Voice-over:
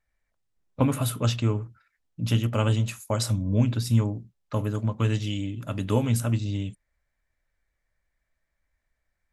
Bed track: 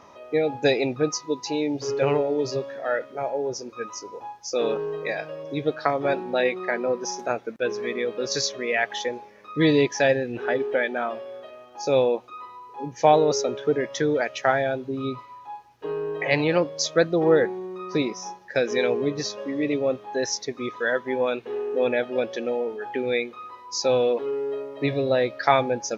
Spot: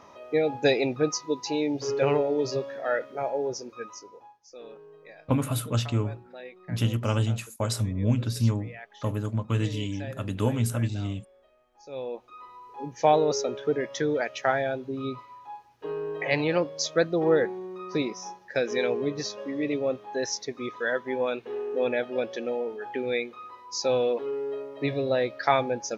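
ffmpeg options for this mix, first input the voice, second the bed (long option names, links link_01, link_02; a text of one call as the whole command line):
ffmpeg -i stem1.wav -i stem2.wav -filter_complex "[0:a]adelay=4500,volume=-2dB[link_01];[1:a]volume=15.5dB,afade=type=out:start_time=3.43:duration=0.97:silence=0.112202,afade=type=in:start_time=11.89:duration=0.78:silence=0.141254[link_02];[link_01][link_02]amix=inputs=2:normalize=0" out.wav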